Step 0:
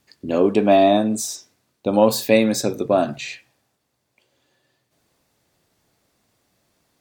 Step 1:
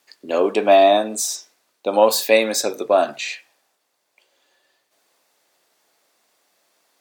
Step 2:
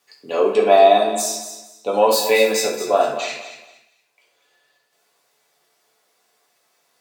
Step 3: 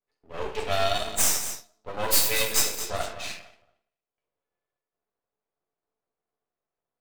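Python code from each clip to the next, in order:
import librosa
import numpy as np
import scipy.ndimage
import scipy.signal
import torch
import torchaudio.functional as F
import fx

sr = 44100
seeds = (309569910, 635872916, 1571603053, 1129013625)

y1 = scipy.signal.sosfilt(scipy.signal.butter(2, 510.0, 'highpass', fs=sr, output='sos'), x)
y1 = y1 * 10.0 ** (4.0 / 20.0)
y2 = fx.echo_feedback(y1, sr, ms=228, feedback_pct=25, wet_db=-11.0)
y2 = fx.rev_fdn(y2, sr, rt60_s=0.62, lf_ratio=0.75, hf_ratio=0.85, size_ms=41.0, drr_db=-3.0)
y2 = y2 * 10.0 ** (-4.5 / 20.0)
y3 = librosa.effects.preemphasis(y2, coef=0.9, zi=[0.0])
y3 = fx.env_lowpass(y3, sr, base_hz=480.0, full_db=-27.5)
y3 = np.maximum(y3, 0.0)
y3 = y3 * 10.0 ** (7.0 / 20.0)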